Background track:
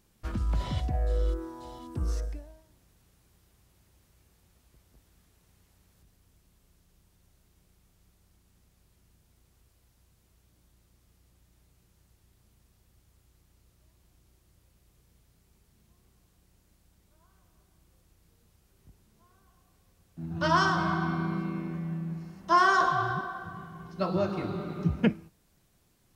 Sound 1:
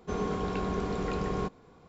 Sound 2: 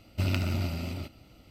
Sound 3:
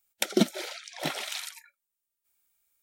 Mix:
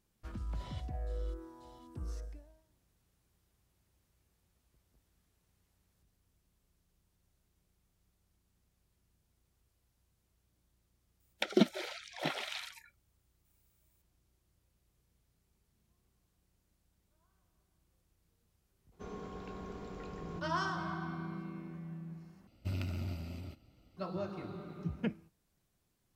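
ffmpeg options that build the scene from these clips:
ffmpeg -i bed.wav -i cue0.wav -i cue1.wav -i cue2.wav -filter_complex "[0:a]volume=-11dB[link_01];[3:a]acrossover=split=4400[link_02][link_03];[link_03]acompressor=threshold=-51dB:ratio=4:attack=1:release=60[link_04];[link_02][link_04]amix=inputs=2:normalize=0[link_05];[2:a]lowshelf=frequency=400:gain=5[link_06];[link_01]asplit=2[link_07][link_08];[link_07]atrim=end=22.474[link_09];[link_06]atrim=end=1.5,asetpts=PTS-STARTPTS,volume=-13.5dB[link_10];[link_08]atrim=start=23.966[link_11];[link_05]atrim=end=2.82,asetpts=PTS-STARTPTS,volume=-3.5dB,afade=type=in:duration=0.004:curve=hsin,afade=type=out:start_time=2.816:duration=0.004:curve=hsin,adelay=11200[link_12];[1:a]atrim=end=1.88,asetpts=PTS-STARTPTS,volume=-14dB,afade=type=in:duration=0.004:curve=hsin,afade=type=out:start_time=1.876:duration=0.004:curve=hsin,adelay=834372S[link_13];[link_09][link_10]acrossfade=duration=0.004:curve1=hsin:curve2=hsin[link_14];[link_14][link_11]acrossfade=duration=0.004:curve1=hsin:curve2=hsin[link_15];[link_15][link_12][link_13]amix=inputs=3:normalize=0" out.wav

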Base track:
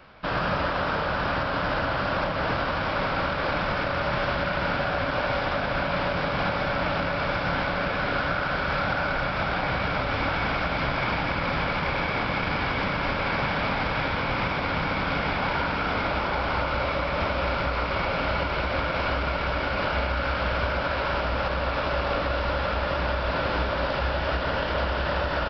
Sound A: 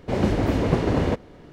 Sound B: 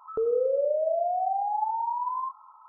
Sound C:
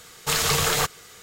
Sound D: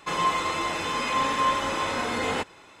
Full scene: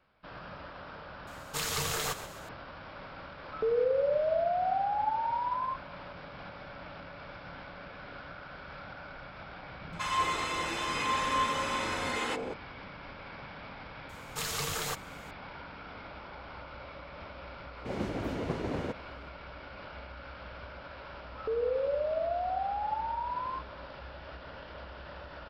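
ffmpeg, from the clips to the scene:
ffmpeg -i bed.wav -i cue0.wav -i cue1.wav -i cue2.wav -i cue3.wav -filter_complex "[3:a]asplit=2[link_01][link_02];[2:a]asplit=2[link_03][link_04];[0:a]volume=-19.5dB[link_05];[link_01]asplit=6[link_06][link_07][link_08][link_09][link_10][link_11];[link_07]adelay=129,afreqshift=-32,volume=-13dB[link_12];[link_08]adelay=258,afreqshift=-64,volume=-19.4dB[link_13];[link_09]adelay=387,afreqshift=-96,volume=-25.8dB[link_14];[link_10]adelay=516,afreqshift=-128,volume=-32.1dB[link_15];[link_11]adelay=645,afreqshift=-160,volume=-38.5dB[link_16];[link_06][link_12][link_13][link_14][link_15][link_16]amix=inputs=6:normalize=0[link_17];[4:a]acrossover=split=220|690[link_18][link_19][link_20];[link_20]adelay=190[link_21];[link_19]adelay=370[link_22];[link_18][link_22][link_21]amix=inputs=3:normalize=0[link_23];[1:a]lowshelf=frequency=93:gain=-9.5[link_24];[link_17]atrim=end=1.22,asetpts=PTS-STARTPTS,volume=-11dB,afade=type=in:duration=0.004:curve=hsin,afade=type=out:start_time=1.216:duration=0.004:curve=hsin,adelay=1270[link_25];[link_03]atrim=end=2.68,asetpts=PTS-STARTPTS,volume=-2.5dB,afade=type=in:duration=0.004:curve=hsin,afade=type=out:start_time=2.676:duration=0.004:curve=hsin,adelay=152145S[link_26];[link_23]atrim=end=2.8,asetpts=PTS-STARTPTS,volume=-4dB,afade=type=in:duration=0.004:curve=hsin,afade=type=out:start_time=2.796:duration=0.004:curve=hsin,adelay=9740[link_27];[link_02]atrim=end=1.22,asetpts=PTS-STARTPTS,volume=-12.5dB,afade=type=in:duration=0.004:curve=hsin,afade=type=out:start_time=1.216:duration=0.004:curve=hsin,adelay=14090[link_28];[link_24]atrim=end=1.52,asetpts=PTS-STARTPTS,volume=-11.5dB,afade=type=in:duration=0.004:curve=hsin,afade=type=out:start_time=1.516:duration=0.004:curve=hsin,adelay=17770[link_29];[link_04]atrim=end=2.68,asetpts=PTS-STARTPTS,volume=-5.5dB,afade=type=in:duration=0.004:curve=hsin,afade=type=out:start_time=2.676:duration=0.004:curve=hsin,adelay=21300[link_30];[link_05][link_25][link_26][link_27][link_28][link_29][link_30]amix=inputs=7:normalize=0" out.wav

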